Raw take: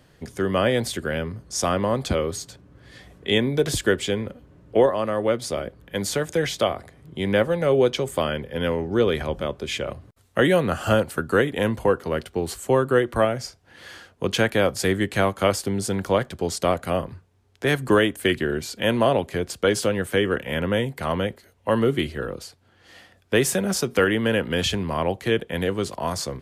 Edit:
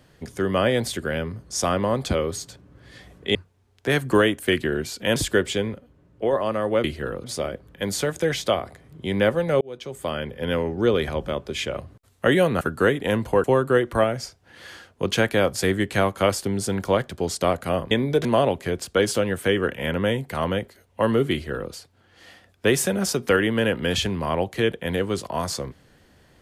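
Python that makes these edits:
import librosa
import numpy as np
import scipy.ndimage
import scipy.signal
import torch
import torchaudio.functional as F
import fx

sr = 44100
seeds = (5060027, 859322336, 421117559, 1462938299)

y = fx.edit(x, sr, fx.swap(start_s=3.35, length_s=0.34, other_s=17.12, other_length_s=1.81),
    fx.clip_gain(start_s=4.27, length_s=0.59, db=-6.0),
    fx.fade_in_span(start_s=7.74, length_s=0.78),
    fx.cut(start_s=10.74, length_s=0.39),
    fx.cut(start_s=11.96, length_s=0.69),
    fx.duplicate(start_s=22.0, length_s=0.4, to_s=5.37), tone=tone)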